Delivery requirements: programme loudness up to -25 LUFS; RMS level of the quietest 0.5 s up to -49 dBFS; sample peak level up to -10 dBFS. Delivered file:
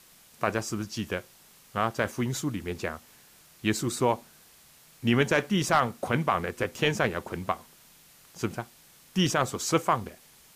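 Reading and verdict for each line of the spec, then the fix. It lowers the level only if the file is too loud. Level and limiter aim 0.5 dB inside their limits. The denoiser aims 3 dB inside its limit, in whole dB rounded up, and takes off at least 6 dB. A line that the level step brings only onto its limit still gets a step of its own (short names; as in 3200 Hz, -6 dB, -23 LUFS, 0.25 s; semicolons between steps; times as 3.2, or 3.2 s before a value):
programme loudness -28.5 LUFS: OK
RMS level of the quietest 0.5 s -56 dBFS: OK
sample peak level -10.5 dBFS: OK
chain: none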